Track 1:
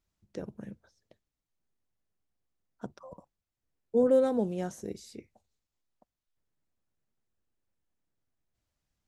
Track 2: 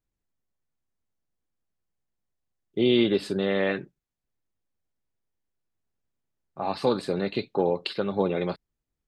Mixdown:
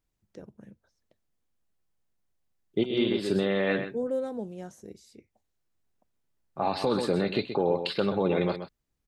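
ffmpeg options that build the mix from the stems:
-filter_complex "[0:a]volume=-6.5dB,asplit=2[a][b];[1:a]volume=2.5dB,asplit=2[c][d];[d]volume=-11.5dB[e];[b]apad=whole_len=400386[f];[c][f]sidechaincompress=threshold=-58dB:ratio=6:attack=6.6:release=169[g];[e]aecho=0:1:128:1[h];[a][g][h]amix=inputs=3:normalize=0,alimiter=limit=-15.5dB:level=0:latency=1:release=32"

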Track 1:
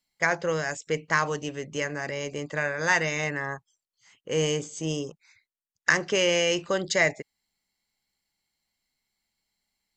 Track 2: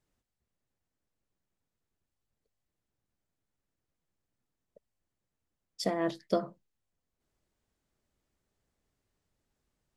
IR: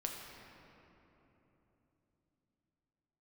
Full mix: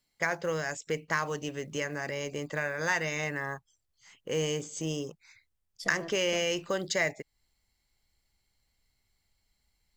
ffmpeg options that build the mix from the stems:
-filter_complex "[0:a]acrusher=bits=8:mode=log:mix=0:aa=0.000001,volume=1.5dB[a];[1:a]asubboost=boost=5.5:cutoff=98,volume=-5.5dB[b];[a][b]amix=inputs=2:normalize=0,acompressor=threshold=-38dB:ratio=1.5"

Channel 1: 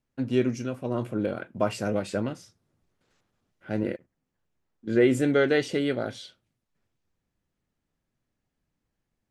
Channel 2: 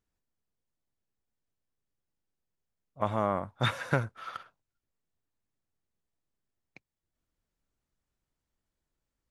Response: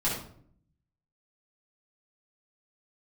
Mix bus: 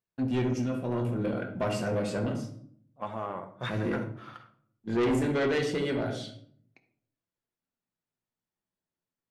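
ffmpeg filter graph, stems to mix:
-filter_complex "[0:a]agate=range=-33dB:threshold=-43dB:ratio=3:detection=peak,volume=-4dB,asplit=2[a][b];[b]volume=-9dB[c];[1:a]highpass=150,highshelf=f=6k:g=-7.5,flanger=delay=1.8:depth=9.5:regen=-48:speed=0.28:shape=sinusoidal,volume=-2.5dB,asplit=2[d][e];[e]volume=-14.5dB[f];[2:a]atrim=start_sample=2205[g];[c][f]amix=inputs=2:normalize=0[h];[h][g]afir=irnorm=-1:irlink=0[i];[a][d][i]amix=inputs=3:normalize=0,asoftclip=type=tanh:threshold=-22.5dB"

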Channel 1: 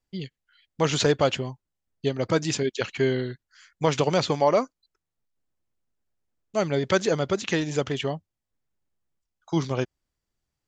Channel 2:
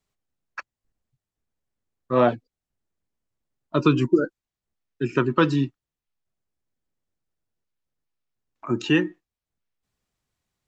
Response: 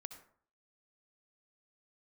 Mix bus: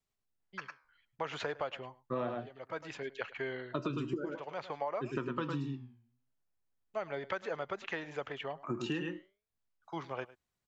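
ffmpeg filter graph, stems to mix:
-filter_complex "[0:a]acrossover=split=560 2600:gain=0.158 1 0.0794[a][b][c];[a][b][c]amix=inputs=3:normalize=0,adelay=400,volume=-5dB,asplit=2[d][e];[e]volume=-20dB[f];[1:a]flanger=delay=7.7:depth=9.7:regen=83:speed=0.42:shape=triangular,volume=-3.5dB,asplit=3[g][h][i];[h]volume=-5dB[j];[i]apad=whole_len=488445[k];[d][k]sidechaincompress=threshold=-42dB:ratio=4:attack=47:release=579[l];[f][j]amix=inputs=2:normalize=0,aecho=0:1:105:1[m];[l][g][m]amix=inputs=3:normalize=0,acompressor=threshold=-32dB:ratio=10"

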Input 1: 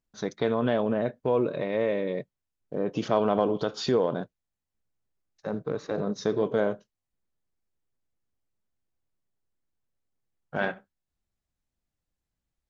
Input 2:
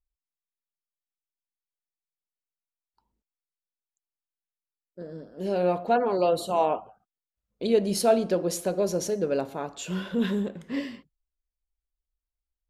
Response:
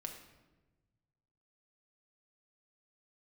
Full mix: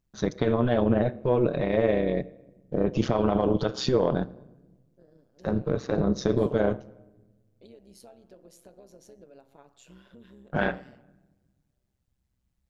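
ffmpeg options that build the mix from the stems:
-filter_complex "[0:a]equalizer=f=75:w=0.59:g=11.5,alimiter=limit=-14.5dB:level=0:latency=1:release=22,acontrast=83,volume=-3.5dB,asplit=2[a][b];[b]volume=-9dB[c];[1:a]acompressor=threshold=-29dB:ratio=16,volume=-15.5dB[d];[2:a]atrim=start_sample=2205[e];[c][e]afir=irnorm=-1:irlink=0[f];[a][d][f]amix=inputs=3:normalize=0,tremolo=f=130:d=0.71"

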